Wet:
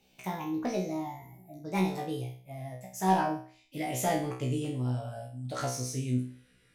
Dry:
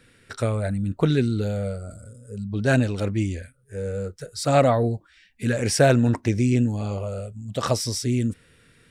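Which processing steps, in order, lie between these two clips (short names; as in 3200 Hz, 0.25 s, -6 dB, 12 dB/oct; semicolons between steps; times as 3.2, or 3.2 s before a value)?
speed glide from 161% -> 103%; overloaded stage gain 12.5 dB; resonator 63 Hz, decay 0.44 s, harmonics all, mix 100%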